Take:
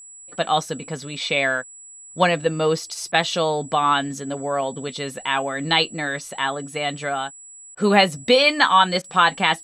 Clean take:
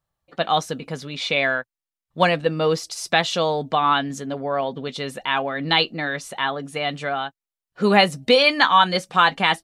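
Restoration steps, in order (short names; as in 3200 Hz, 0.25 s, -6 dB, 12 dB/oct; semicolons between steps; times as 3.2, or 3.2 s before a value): notch 7800 Hz, Q 30; interpolate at 3.12/7.75/9.02, 20 ms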